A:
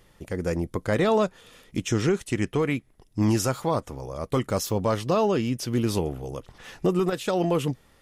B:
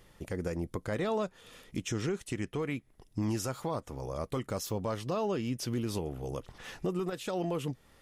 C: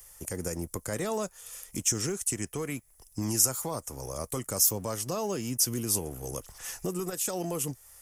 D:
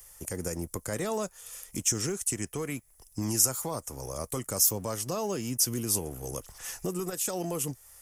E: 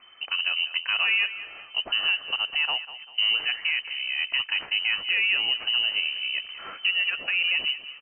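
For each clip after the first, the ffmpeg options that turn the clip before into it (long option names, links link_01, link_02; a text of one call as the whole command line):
ffmpeg -i in.wav -filter_complex "[0:a]asplit=2[link_01][link_02];[link_02]acompressor=threshold=-31dB:ratio=6,volume=-1.5dB[link_03];[link_01][link_03]amix=inputs=2:normalize=0,alimiter=limit=-17dB:level=0:latency=1:release=314,volume=-7dB" out.wav
ffmpeg -i in.wav -filter_complex "[0:a]acrossover=split=110|490|2500[link_01][link_02][link_03][link_04];[link_02]aeval=exprs='sgn(val(0))*max(abs(val(0))-0.0015,0)':channel_layout=same[link_05];[link_01][link_05][link_03][link_04]amix=inputs=4:normalize=0,aexciter=amount=9.7:drive=3.8:freq=5500" out.wav
ffmpeg -i in.wav -af anull out.wav
ffmpeg -i in.wav -af "asoftclip=type=tanh:threshold=-19.5dB,aecho=1:1:196|392|588|784:0.2|0.0818|0.0335|0.0138,lowpass=frequency=2600:width_type=q:width=0.5098,lowpass=frequency=2600:width_type=q:width=0.6013,lowpass=frequency=2600:width_type=q:width=0.9,lowpass=frequency=2600:width_type=q:width=2.563,afreqshift=-3100,volume=8.5dB" out.wav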